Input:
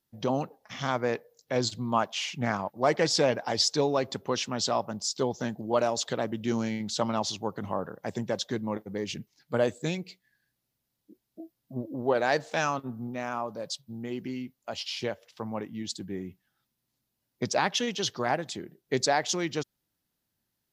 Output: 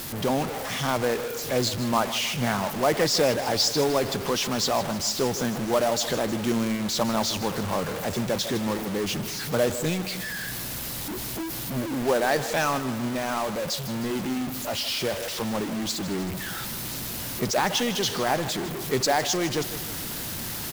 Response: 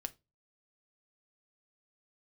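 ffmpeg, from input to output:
-af "aeval=exprs='val(0)+0.5*0.0447*sgn(val(0))':c=same,aecho=1:1:156|312|468|624|780:0.2|0.106|0.056|0.0297|0.0157,acrusher=bits=3:mode=log:mix=0:aa=0.000001"

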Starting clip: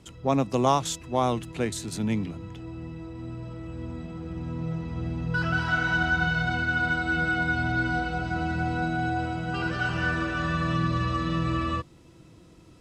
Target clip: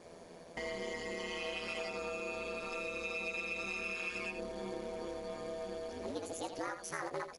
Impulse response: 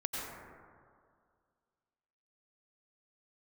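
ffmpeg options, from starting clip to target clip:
-filter_complex "[0:a]areverse,asplit=2[a][b];[b]adelay=21,volume=-5dB[c];[a][c]amix=inputs=2:normalize=0,acompressor=threshold=-36dB:ratio=8,acrusher=bits=4:mode=log:mix=0:aa=0.000001,equalizer=f=160:t=o:w=0.33:g=7,equalizer=f=5k:t=o:w=0.33:g=-7,equalizer=f=8k:t=o:w=0.33:g=12,asetrate=76440,aresample=44100,lowshelf=f=320:t=q:w=1.5:g=-8,aeval=exprs='val(0)*sin(2*PI*85*n/s)':c=same,aecho=1:1:84:0.335,volume=1dB" -ar 44100 -c:a mp2 -b:a 64k

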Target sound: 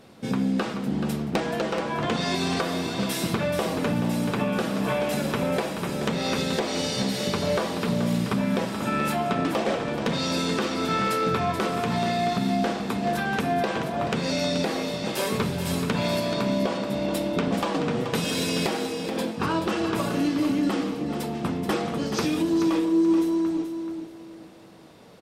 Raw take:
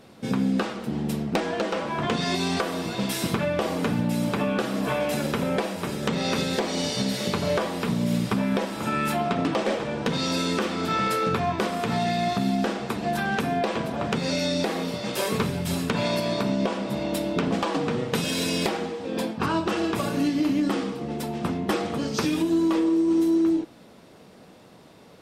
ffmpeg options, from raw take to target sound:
-filter_complex "[0:a]asplit=2[a][b];[b]volume=20dB,asoftclip=hard,volume=-20dB,volume=-7.5dB[c];[a][c]amix=inputs=2:normalize=0,aecho=1:1:430|860|1290:0.376|0.094|0.0235,volume=-3.5dB"

